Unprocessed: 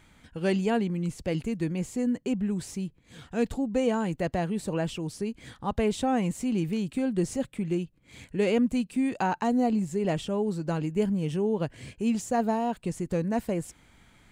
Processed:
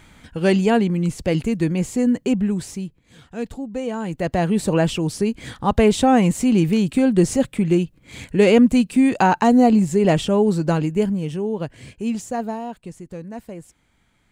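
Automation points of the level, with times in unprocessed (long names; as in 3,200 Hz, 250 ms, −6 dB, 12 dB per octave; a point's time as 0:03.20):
0:02.37 +9 dB
0:03.25 −1 dB
0:03.88 −1 dB
0:04.53 +11 dB
0:10.63 +11 dB
0:11.34 +2.5 dB
0:12.17 +2.5 dB
0:13.07 −6 dB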